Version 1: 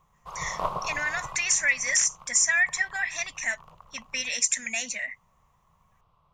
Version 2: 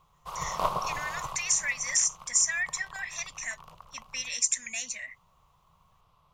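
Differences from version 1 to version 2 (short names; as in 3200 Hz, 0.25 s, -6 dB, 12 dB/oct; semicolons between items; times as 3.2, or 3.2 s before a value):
speech -11.0 dB; master: add high shelf 3000 Hz +11 dB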